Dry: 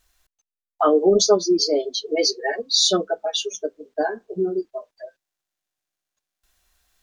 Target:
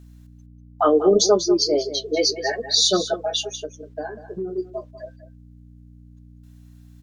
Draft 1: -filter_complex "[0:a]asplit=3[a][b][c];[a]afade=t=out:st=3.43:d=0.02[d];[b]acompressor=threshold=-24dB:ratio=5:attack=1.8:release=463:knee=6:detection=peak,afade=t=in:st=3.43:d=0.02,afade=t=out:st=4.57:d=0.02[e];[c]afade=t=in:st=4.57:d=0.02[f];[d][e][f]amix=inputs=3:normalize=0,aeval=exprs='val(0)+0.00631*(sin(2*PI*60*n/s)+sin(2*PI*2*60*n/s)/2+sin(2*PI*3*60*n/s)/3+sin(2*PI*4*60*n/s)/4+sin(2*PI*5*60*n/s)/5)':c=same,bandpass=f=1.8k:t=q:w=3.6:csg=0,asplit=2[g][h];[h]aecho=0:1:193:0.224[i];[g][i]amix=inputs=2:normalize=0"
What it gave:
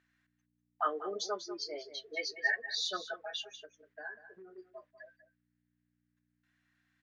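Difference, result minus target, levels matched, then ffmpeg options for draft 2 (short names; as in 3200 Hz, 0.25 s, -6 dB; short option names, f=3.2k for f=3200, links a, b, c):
2000 Hz band +15.0 dB
-filter_complex "[0:a]asplit=3[a][b][c];[a]afade=t=out:st=3.43:d=0.02[d];[b]acompressor=threshold=-24dB:ratio=5:attack=1.8:release=463:knee=6:detection=peak,afade=t=in:st=3.43:d=0.02,afade=t=out:st=4.57:d=0.02[e];[c]afade=t=in:st=4.57:d=0.02[f];[d][e][f]amix=inputs=3:normalize=0,aeval=exprs='val(0)+0.00631*(sin(2*PI*60*n/s)+sin(2*PI*2*60*n/s)/2+sin(2*PI*3*60*n/s)/3+sin(2*PI*4*60*n/s)/4+sin(2*PI*5*60*n/s)/5)':c=same,asplit=2[g][h];[h]aecho=0:1:193:0.224[i];[g][i]amix=inputs=2:normalize=0"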